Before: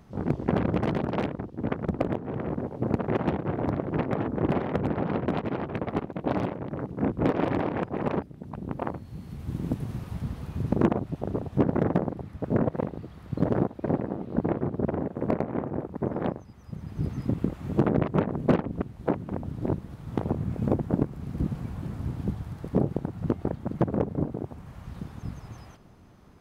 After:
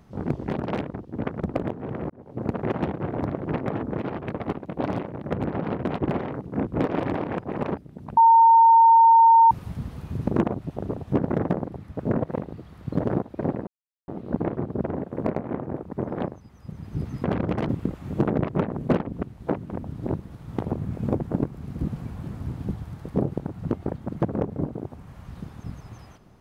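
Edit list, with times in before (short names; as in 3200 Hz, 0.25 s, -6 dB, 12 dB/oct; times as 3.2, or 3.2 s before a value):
0.49–0.94 move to 17.28
2.55–2.99 fade in
4.43–4.73 swap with 5.45–6.77
8.62–9.96 bleep 913 Hz -10.5 dBFS
14.12 insert silence 0.41 s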